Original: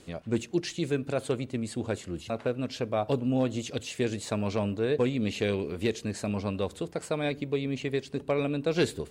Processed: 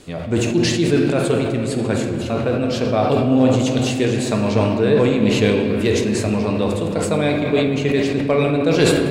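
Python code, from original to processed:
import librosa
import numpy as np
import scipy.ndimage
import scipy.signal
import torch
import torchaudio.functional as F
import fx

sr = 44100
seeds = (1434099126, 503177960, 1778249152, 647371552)

y = fx.room_shoebox(x, sr, seeds[0], volume_m3=210.0, walls='hard', distance_m=0.4)
y = fx.sustainer(y, sr, db_per_s=31.0)
y = y * librosa.db_to_amplitude(8.0)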